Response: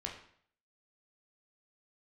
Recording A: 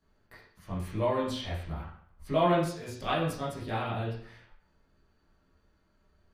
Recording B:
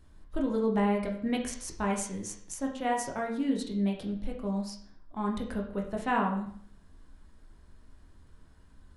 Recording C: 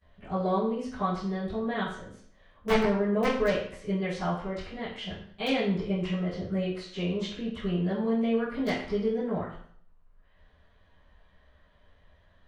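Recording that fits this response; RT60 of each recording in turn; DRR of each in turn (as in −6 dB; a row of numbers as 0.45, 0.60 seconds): B; 0.60, 0.60, 0.60 seconds; −9.0, −0.5, −19.0 decibels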